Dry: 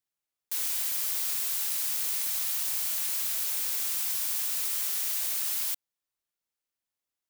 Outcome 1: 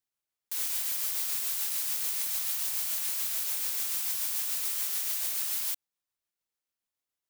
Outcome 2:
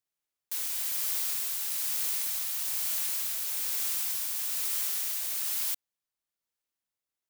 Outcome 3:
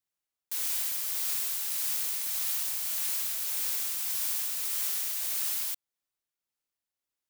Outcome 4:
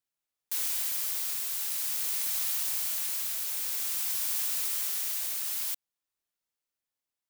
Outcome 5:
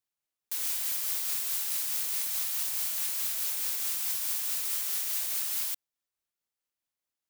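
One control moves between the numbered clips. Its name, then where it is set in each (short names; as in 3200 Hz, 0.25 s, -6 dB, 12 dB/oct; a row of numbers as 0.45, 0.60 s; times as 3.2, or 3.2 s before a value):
tremolo, rate: 6.9, 1.1, 1.7, 0.51, 4.7 Hz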